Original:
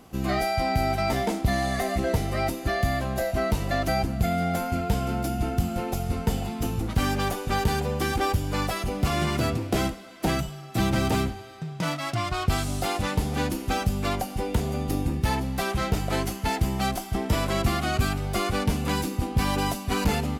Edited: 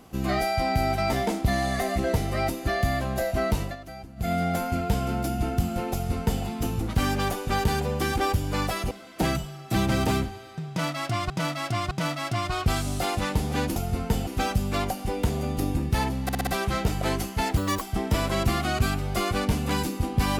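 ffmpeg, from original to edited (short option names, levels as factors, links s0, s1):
-filter_complex "[0:a]asplit=14[s0][s1][s2][s3][s4][s5][s6][s7][s8][s9][s10][s11][s12][s13];[s0]atrim=end=3.76,asetpts=PTS-STARTPTS,afade=t=out:st=3.61:d=0.15:silence=0.158489[s14];[s1]atrim=start=3.76:end=4.16,asetpts=PTS-STARTPTS,volume=0.158[s15];[s2]atrim=start=4.16:end=8.912,asetpts=PTS-STARTPTS,afade=t=in:d=0.15:silence=0.158489[s16];[s3]atrim=start=9.948:end=12.342[s17];[s4]atrim=start=11.728:end=12.342[s18];[s5]atrim=start=11.728:end=13.582[s19];[s6]atrim=start=5.928:end=6.442[s20];[s7]atrim=start=13.578:end=15.602[s21];[s8]atrim=start=15.538:end=15.602[s22];[s9]atrim=start=15.538:end=15.602[s23];[s10]atrim=start=15.538:end=15.602[s24];[s11]atrim=start=15.538:end=16.644[s25];[s12]atrim=start=16.64:end=17,asetpts=PTS-STARTPTS,asetrate=65268,aresample=44100,atrim=end_sample=10727,asetpts=PTS-STARTPTS[s26];[s13]atrim=start=16.996[s27];[s14][s15][s16]concat=n=3:v=0:a=1[s28];[s28][s17]acrossfade=d=0.004:c1=hsin:c2=hsin[s29];[s29][s18]acrossfade=d=0.004:c1=hsin:c2=hsin[s30];[s30][s19]acrossfade=d=0.004:c1=hsin:c2=hsin[s31];[s31][s20]acrossfade=d=0.004:c1=hsin:c2=hsin[s32];[s32][s21]acrossfade=d=0.004:c1=hsin:c2=hsin[s33];[s33][s22]acrossfade=d=0.004:c1=hsin:c2=hsin[s34];[s34][s23]acrossfade=d=0.004:c1=hsin:c2=hsin[s35];[s35][s24]acrossfade=d=0.004:c1=hsin:c2=hsin[s36];[s36][s25]acrossfade=d=0.004:c1=hsin:c2=hsin[s37];[s37][s26]acrossfade=d=0.004:c1=hsin:c2=hsin[s38];[s38][s27]acrossfade=d=0.004:c1=hsin:c2=hsin"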